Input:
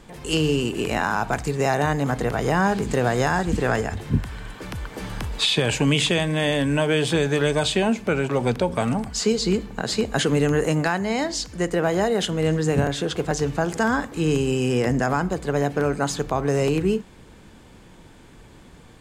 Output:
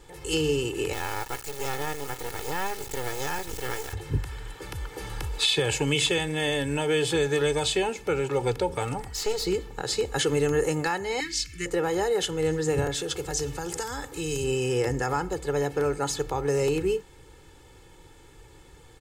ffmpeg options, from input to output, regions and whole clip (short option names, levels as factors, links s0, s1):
-filter_complex "[0:a]asettb=1/sr,asplit=3[s0][s1][s2];[s0]atrim=end=0.934[s3];[s1]atrim=start=0.93:end=3.93,asetpts=PTS-STARTPTS,afade=t=in:d=0.004:c=qsin,afade=t=out:st=2.996:d=0.004:c=qsin,lowshelf=f=390:g=-8,acrusher=bits=3:dc=4:mix=0:aa=0.000001[s4];[s2]atrim=start=3.926[s5];[s3][s4]acrossfade=d=0.004:c1=hsin:c2=qsin[s6];[s6][s5]acrossfade=d=0.004:c1=qsin:c2=hsin,asettb=1/sr,asplit=3[s7][s8][s9];[s7]atrim=end=9.004[s10];[s8]atrim=start=9:end=9.47,asetpts=PTS-STARTPTS,afade=t=in:d=0.004:c=qsin,afade=t=out:st=0.466:d=0.004:c=qsin,aeval=exprs='val(0)+0.00398*sin(2*PI*1900*n/s)':c=same,acrossover=split=6300[s11][s12];[s12]acompressor=threshold=0.0141:ratio=4:attack=1:release=60[s13];[s11][s13]amix=inputs=2:normalize=0,aeval=exprs='clip(val(0),-1,0.0355)':c=same[s14];[s9]atrim=start=9.466[s15];[s10][s14]acrossfade=d=0.004:c1=hsin:c2=qsin[s16];[s16][s15]acrossfade=d=0.004:c1=qsin:c2=hsin,asettb=1/sr,asplit=3[s17][s18][s19];[s17]atrim=end=11.204[s20];[s18]atrim=start=11.2:end=11.66,asetpts=PTS-STARTPTS,afade=t=in:d=0.004:c=qsin,afade=t=out:st=0.456:d=0.004:c=qsin,asuperstop=centerf=660:order=4:qfactor=0.53,equalizer=f=2300:w=2.4:g=11[s21];[s19]atrim=start=11.656[s22];[s20][s21]acrossfade=d=0.004:c1=hsin:c2=qsin[s23];[s23][s22]acrossfade=d=0.004:c1=qsin:c2=hsin,asettb=1/sr,asplit=3[s24][s25][s26];[s24]atrim=end=12.944[s27];[s25]atrim=start=12.94:end=14.44,asetpts=PTS-STARTPTS,afade=t=in:d=0.004:c=qsin,afade=t=out:st=1.496:d=0.004:c=qsin,highshelf=f=5200:g=5.5,acrossover=split=130|3000[s28][s29][s30];[s29]acompressor=threshold=0.0631:ratio=6:attack=3.2:release=140:knee=2.83:detection=peak[s31];[s28][s31][s30]amix=inputs=3:normalize=0[s32];[s26]atrim=start=14.436[s33];[s27][s32]acrossfade=d=0.004:c1=hsin:c2=qsin[s34];[s34][s33]acrossfade=d=0.004:c1=qsin:c2=hsin,highshelf=f=6400:g=6.5,aecho=1:1:2.3:0.82,volume=0.473"